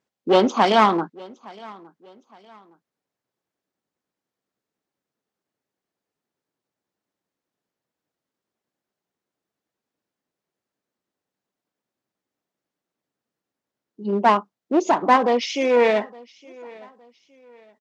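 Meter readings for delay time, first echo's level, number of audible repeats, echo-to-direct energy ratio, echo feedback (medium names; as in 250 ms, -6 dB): 864 ms, -23.5 dB, 2, -23.0 dB, 35%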